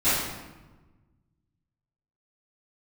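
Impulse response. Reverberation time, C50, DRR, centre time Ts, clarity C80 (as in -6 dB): 1.2 s, -2.0 dB, -16.5 dB, 85 ms, 2.0 dB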